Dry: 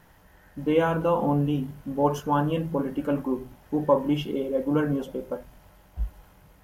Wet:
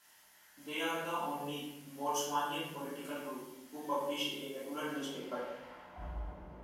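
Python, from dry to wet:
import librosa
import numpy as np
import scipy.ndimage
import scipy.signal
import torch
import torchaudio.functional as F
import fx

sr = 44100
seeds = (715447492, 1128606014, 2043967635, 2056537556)

y = fx.filter_sweep_bandpass(x, sr, from_hz=7800.0, to_hz=500.0, start_s=4.82, end_s=6.29, q=0.82)
y = fx.room_shoebox(y, sr, seeds[0], volume_m3=310.0, walls='mixed', distance_m=3.0)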